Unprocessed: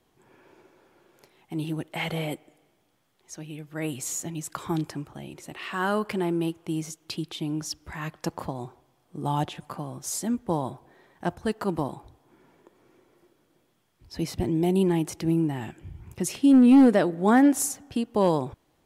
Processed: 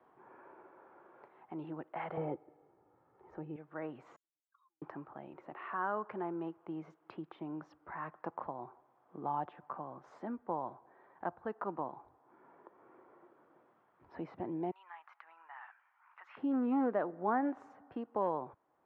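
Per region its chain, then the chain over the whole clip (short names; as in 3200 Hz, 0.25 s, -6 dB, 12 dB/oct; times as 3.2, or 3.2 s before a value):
2.17–3.56 tilt -4.5 dB/oct + comb 2.3 ms, depth 48%
4.16–4.82 spectral contrast raised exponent 3.2 + compressor, threshold -37 dBFS + ladder band-pass 4300 Hz, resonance 65%
14.71–16.37 inverse Chebyshev high-pass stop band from 260 Hz, stop band 70 dB + air absorption 120 m
whole clip: LPF 1200 Hz 24 dB/oct; differentiator; three-band squash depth 40%; gain +13.5 dB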